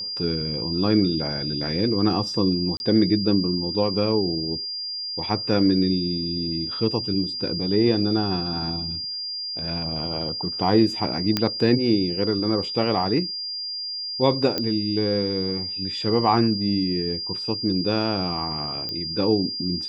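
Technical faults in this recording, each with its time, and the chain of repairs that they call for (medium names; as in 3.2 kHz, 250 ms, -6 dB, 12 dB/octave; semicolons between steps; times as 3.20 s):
whine 4.8 kHz -28 dBFS
2.77–2.80 s: dropout 31 ms
11.37 s: pop -6 dBFS
14.58 s: pop -10 dBFS
18.89 s: pop -17 dBFS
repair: de-click; band-stop 4.8 kHz, Q 30; interpolate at 2.77 s, 31 ms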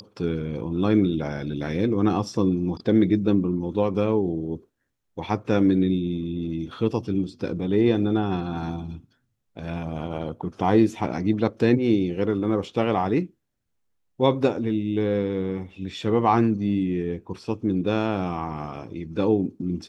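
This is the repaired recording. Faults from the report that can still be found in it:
18.89 s: pop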